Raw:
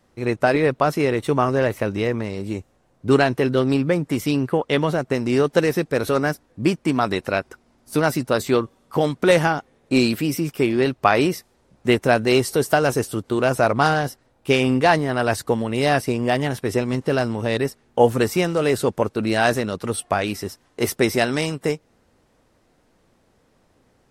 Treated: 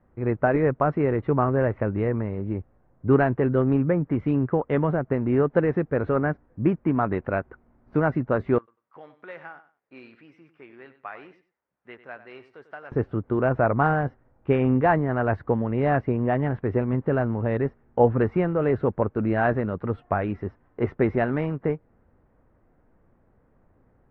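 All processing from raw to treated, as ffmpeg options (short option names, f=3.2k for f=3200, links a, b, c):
-filter_complex "[0:a]asettb=1/sr,asplit=3[a][b][c];[a]atrim=end=8.584[d];[b]atrim=start=8.58:end=12.92,asetpts=PTS-STARTPTS,afade=t=in:d=0.004:c=qsin,afade=t=out:st=4.336:d=0.004:c=qsin,aderivative,aecho=1:1:96|192:0.211|0.0423,atrim=end_sample=191394[e];[c]atrim=start=12.916[f];[d][e]acrossfade=d=0.004:c1=hsin:c2=qsin[g];[g][f]acrossfade=d=0.004:c1=qsin:c2=hsin,lowpass=f=1.8k:w=0.5412,lowpass=f=1.8k:w=1.3066,lowshelf=f=130:g=9.5,volume=-4dB"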